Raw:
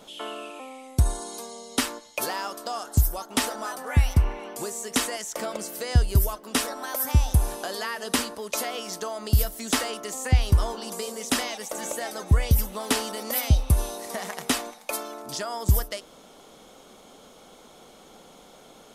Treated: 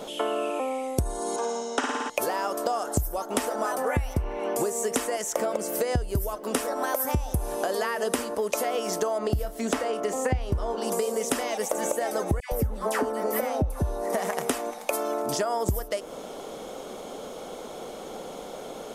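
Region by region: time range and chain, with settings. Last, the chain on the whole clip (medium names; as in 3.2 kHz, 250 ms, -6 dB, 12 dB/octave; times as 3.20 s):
1.36–2.10 s: cabinet simulation 320–6700 Hz, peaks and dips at 370 Hz -5 dB, 560 Hz -3 dB, 850 Hz +5 dB, 1.5 kHz +7 dB, 2.2 kHz -5 dB, 4.5 kHz -9 dB + flutter echo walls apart 9.5 m, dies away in 1 s
9.18–10.78 s: low-pass 3.5 kHz 6 dB/octave + doubling 30 ms -13 dB
12.40–14.13 s: resonant high shelf 2.2 kHz -7 dB, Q 1.5 + phase dispersion lows, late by 118 ms, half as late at 1.1 kHz
whole clip: peaking EQ 500 Hz +8 dB 1.5 oct; compression 10:1, threshold -30 dBFS; dynamic bell 4 kHz, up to -7 dB, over -57 dBFS, Q 1.6; trim +7 dB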